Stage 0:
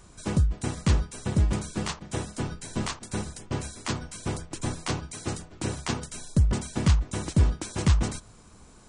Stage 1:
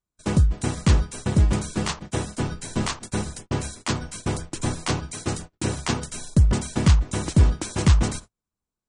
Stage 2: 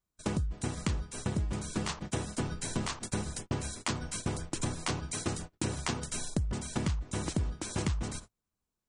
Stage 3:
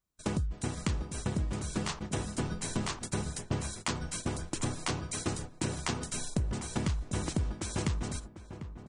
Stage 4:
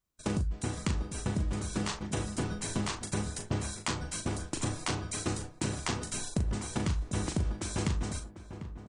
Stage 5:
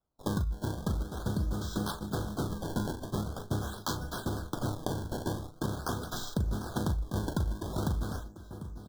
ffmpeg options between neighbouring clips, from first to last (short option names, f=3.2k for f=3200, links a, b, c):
-af "acontrast=21,agate=range=-42dB:threshold=-36dB:ratio=16:detection=peak"
-af "acompressor=threshold=-30dB:ratio=6"
-filter_complex "[0:a]asplit=2[a][b];[b]adelay=747,lowpass=f=1.4k:p=1,volume=-11dB,asplit=2[c][d];[d]adelay=747,lowpass=f=1.4k:p=1,volume=0.36,asplit=2[e][f];[f]adelay=747,lowpass=f=1.4k:p=1,volume=0.36,asplit=2[g][h];[h]adelay=747,lowpass=f=1.4k:p=1,volume=0.36[i];[a][c][e][g][i]amix=inputs=5:normalize=0"
-filter_complex "[0:a]asplit=2[a][b];[b]adelay=39,volume=-8dB[c];[a][c]amix=inputs=2:normalize=0"
-filter_complex "[0:a]acrossover=split=100[a][b];[b]acrusher=samples=20:mix=1:aa=0.000001:lfo=1:lforange=32:lforate=0.44[c];[a][c]amix=inputs=2:normalize=0,asuperstop=centerf=2300:order=20:qfactor=1.5"